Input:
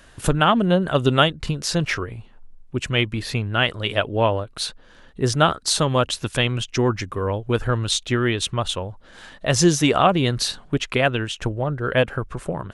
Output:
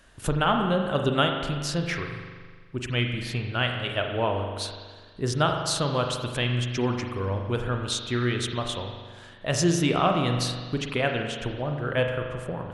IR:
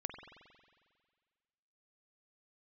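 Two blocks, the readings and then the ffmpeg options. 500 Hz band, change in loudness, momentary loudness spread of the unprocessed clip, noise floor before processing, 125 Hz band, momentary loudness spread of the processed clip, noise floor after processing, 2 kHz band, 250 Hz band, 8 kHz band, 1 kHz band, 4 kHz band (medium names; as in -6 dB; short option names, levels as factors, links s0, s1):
-5.5 dB, -5.5 dB, 11 LU, -49 dBFS, -4.5 dB, 11 LU, -47 dBFS, -5.5 dB, -5.0 dB, -7.0 dB, -5.5 dB, -6.0 dB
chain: -filter_complex "[1:a]atrim=start_sample=2205,asetrate=48510,aresample=44100[s0];[0:a][s0]afir=irnorm=-1:irlink=0,volume=0.668"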